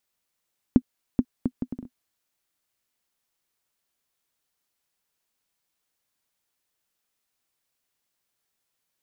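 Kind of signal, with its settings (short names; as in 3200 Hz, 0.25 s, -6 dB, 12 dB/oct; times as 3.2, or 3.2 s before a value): bouncing ball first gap 0.43 s, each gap 0.62, 250 Hz, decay 58 ms -4.5 dBFS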